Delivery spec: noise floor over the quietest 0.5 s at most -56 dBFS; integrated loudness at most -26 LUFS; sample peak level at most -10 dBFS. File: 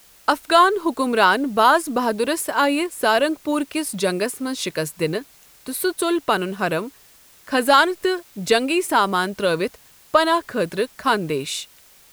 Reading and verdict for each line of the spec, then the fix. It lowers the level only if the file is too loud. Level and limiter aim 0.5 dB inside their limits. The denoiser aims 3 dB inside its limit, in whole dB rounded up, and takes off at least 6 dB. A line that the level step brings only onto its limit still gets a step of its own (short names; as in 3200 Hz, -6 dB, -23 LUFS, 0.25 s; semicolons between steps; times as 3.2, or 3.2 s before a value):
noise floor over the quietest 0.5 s -51 dBFS: fail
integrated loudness -20.5 LUFS: fail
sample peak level -2.5 dBFS: fail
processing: gain -6 dB; limiter -10.5 dBFS